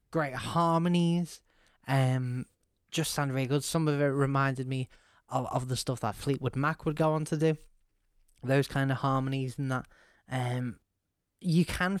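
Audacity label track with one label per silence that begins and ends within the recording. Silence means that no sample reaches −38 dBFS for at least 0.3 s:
1.350000	1.880000	silence
2.430000	2.930000	silence
4.840000	5.320000	silence
7.560000	8.440000	silence
9.810000	10.320000	silence
10.710000	11.440000	silence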